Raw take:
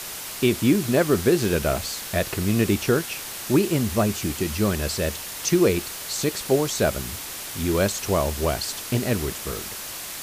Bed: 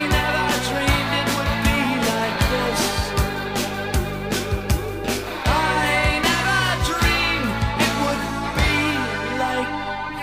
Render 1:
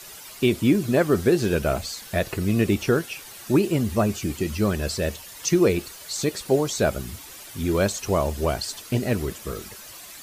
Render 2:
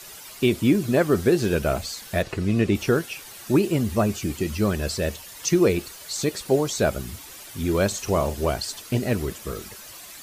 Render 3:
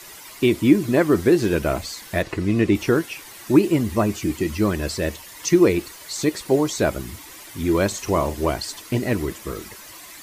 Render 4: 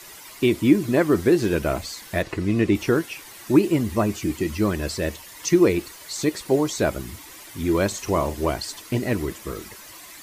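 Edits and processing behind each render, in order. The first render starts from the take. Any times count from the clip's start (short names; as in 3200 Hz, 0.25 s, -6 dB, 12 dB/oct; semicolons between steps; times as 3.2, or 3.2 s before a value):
denoiser 11 dB, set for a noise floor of -35 dBFS
2.22–2.75 air absorption 55 m; 7.87–8.5 doubler 47 ms -11.5 dB
thirty-one-band EQ 315 Hz +8 dB, 1000 Hz +6 dB, 2000 Hz +6 dB
gain -1.5 dB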